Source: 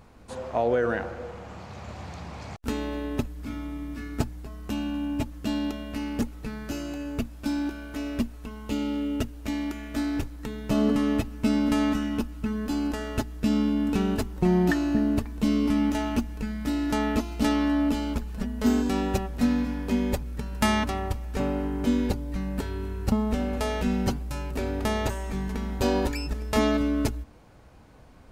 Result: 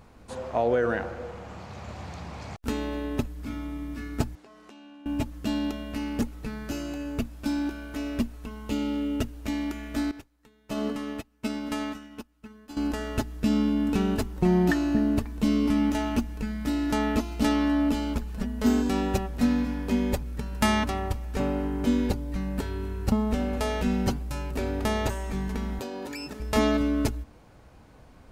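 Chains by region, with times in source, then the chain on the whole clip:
4.35–5.06 s: band-pass 350–6400 Hz + compression, threshold -47 dBFS
10.11–12.77 s: bass shelf 300 Hz -9.5 dB + upward expansion 2.5:1, over -39 dBFS
25.79–26.40 s: high-pass 190 Hz + compression 16:1, threshold -31 dBFS
whole clip: none

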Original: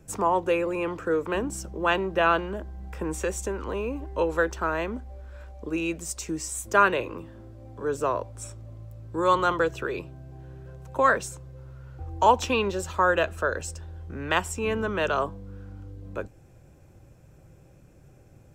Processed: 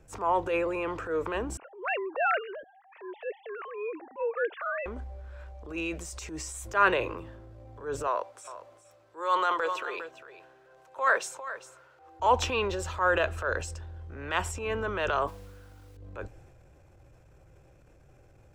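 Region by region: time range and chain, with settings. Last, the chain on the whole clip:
1.57–4.86 s: formants replaced by sine waves + bass shelf 390 Hz -8 dB
8.07–12.20 s: high-pass 520 Hz + delay 402 ms -14 dB
15.27–15.97 s: bass shelf 380 Hz -8 dB + modulation noise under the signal 14 dB
whole clip: transient shaper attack -9 dB, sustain +5 dB; low-pass 3.9 kHz 6 dB/octave; peaking EQ 200 Hz -10 dB 1.5 oct

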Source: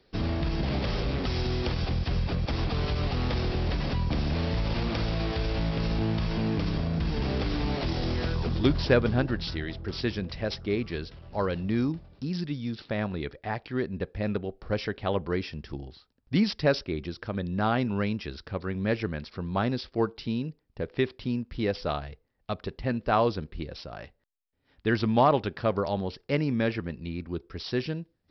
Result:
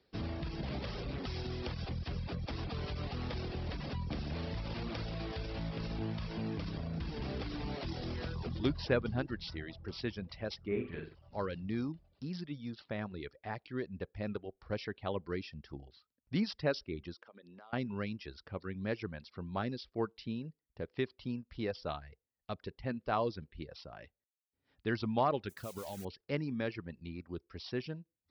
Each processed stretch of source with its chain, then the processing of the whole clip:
10.67–11.15 s: low-pass 2.7 kHz 24 dB/octave + flutter echo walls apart 7.6 m, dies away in 0.69 s
17.14–17.73 s: high-pass 350 Hz + compression 8:1, threshold -42 dBFS
25.49–26.05 s: modulation noise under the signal 10 dB + compression 16:1, threshold -28 dBFS
whole clip: high-pass 47 Hz; reverb removal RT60 0.61 s; trim -8.5 dB

